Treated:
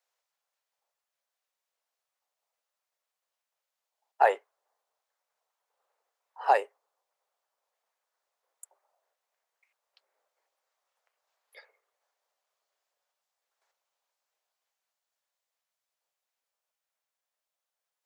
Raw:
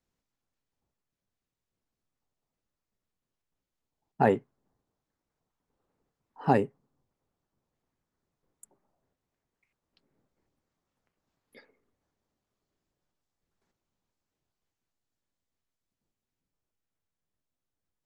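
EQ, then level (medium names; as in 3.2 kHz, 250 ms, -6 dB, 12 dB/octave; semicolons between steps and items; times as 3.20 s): steep high-pass 540 Hz 36 dB/octave; +4.0 dB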